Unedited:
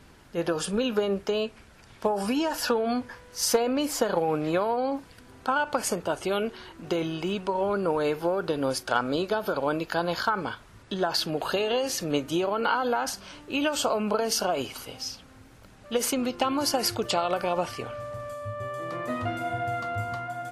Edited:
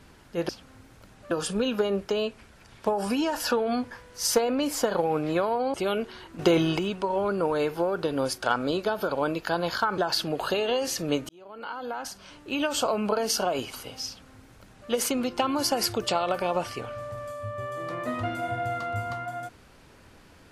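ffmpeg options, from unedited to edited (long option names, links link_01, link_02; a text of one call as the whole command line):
ffmpeg -i in.wav -filter_complex "[0:a]asplit=8[link_01][link_02][link_03][link_04][link_05][link_06][link_07][link_08];[link_01]atrim=end=0.492[link_09];[link_02]atrim=start=15.098:end=15.922[link_10];[link_03]atrim=start=0.488:end=4.922[link_11];[link_04]atrim=start=6.188:end=6.842[link_12];[link_05]atrim=start=6.838:end=7.242,asetpts=PTS-STARTPTS,volume=7dB[link_13];[link_06]atrim=start=7.238:end=10.432[link_14];[link_07]atrim=start=10.998:end=12.31,asetpts=PTS-STARTPTS,afade=type=out:start_time=1.308:duration=0.004:curve=hsin[link_15];[link_08]atrim=start=12.31,asetpts=PTS-STARTPTS,afade=type=in:duration=1.51[link_16];[link_09][link_10]acrossfade=duration=0.004:curve1=hsin:curve2=hsin[link_17];[link_17][link_11]acrossfade=duration=0.004:curve1=hsin:curve2=hsin[link_18];[link_18][link_12]acrossfade=duration=0.004:curve1=hsin:curve2=hsin[link_19];[link_19][link_13]acrossfade=duration=0.004:curve1=hsin:curve2=hsin[link_20];[link_20][link_14]acrossfade=duration=0.004:curve1=hsin:curve2=hsin[link_21];[link_15][link_16]concat=n=2:v=0:a=1[link_22];[link_21][link_22]acrossfade=duration=0.004:curve1=hsin:curve2=hsin" out.wav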